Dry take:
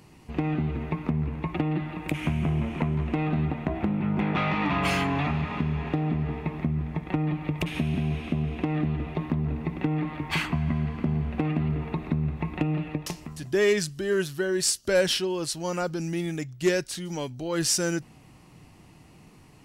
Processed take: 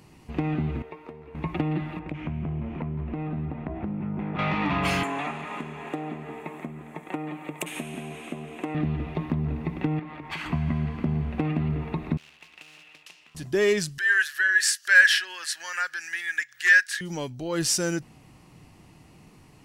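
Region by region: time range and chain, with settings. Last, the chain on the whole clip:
0.82–1.35 resonant low shelf 280 Hz -11.5 dB, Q 1.5 + resonator 460 Hz, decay 0.2 s, mix 70%
1.99–4.39 compressor 2:1, threshold -29 dBFS + tape spacing loss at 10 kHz 32 dB
5.03–8.75 HPF 340 Hz + resonant high shelf 6200 Hz +7.5 dB, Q 3
9.99–10.46 LPF 1400 Hz 6 dB/oct + compressor 4:1, threshold -30 dBFS + tilt +2.5 dB/oct
12.17–13.35 short-mantissa float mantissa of 2-bit + band-pass 2700 Hz, Q 13 + spectral compressor 2:1
13.98–17.01 resonant high-pass 1700 Hz, resonance Q 14 + upward compressor, threshold -32 dBFS
whole clip: dry

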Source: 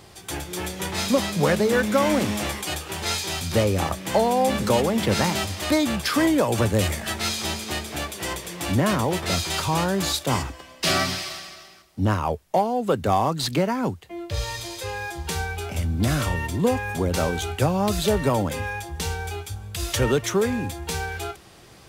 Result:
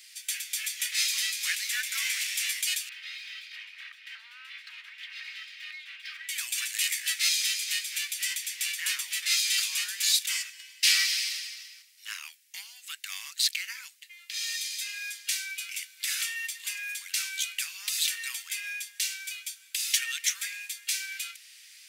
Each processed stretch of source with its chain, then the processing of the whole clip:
2.89–6.29 minimum comb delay 3.2 ms + compressor 2.5:1, threshold -27 dBFS + air absorption 370 m
whole clip: steep high-pass 2000 Hz 36 dB/oct; bell 3400 Hz -3 dB 0.55 oct; gain +3.5 dB

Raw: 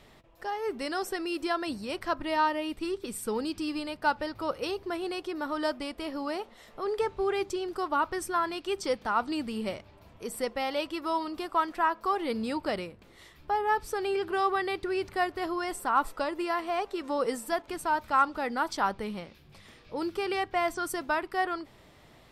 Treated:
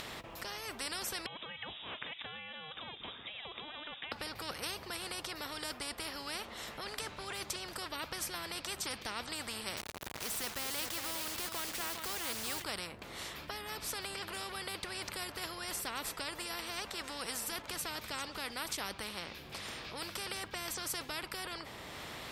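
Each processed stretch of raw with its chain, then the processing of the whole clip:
1.26–4.12 compressor 4:1, threshold -39 dBFS + inverted band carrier 3600 Hz
9.77–12.64 requantised 8-bit, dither none + echo 0.408 s -14 dB
whole clip: HPF 60 Hz; upward compressor, threshold -46 dBFS; spectral compressor 4:1; gain -6.5 dB

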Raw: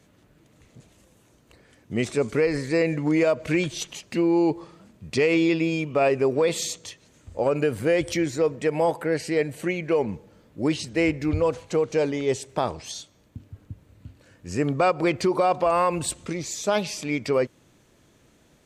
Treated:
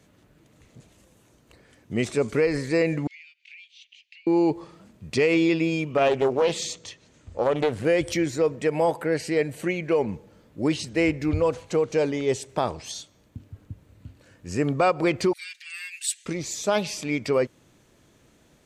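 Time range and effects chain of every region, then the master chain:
3.07–4.27 steep high-pass 2400 Hz 48 dB/oct + tape spacing loss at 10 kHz 44 dB + three-band squash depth 100%
5.97–7.85 LPF 7500 Hz + Doppler distortion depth 0.38 ms
15.33–16.26 steep high-pass 1700 Hz 72 dB/oct + comb 7.4 ms, depth 72%
whole clip: dry

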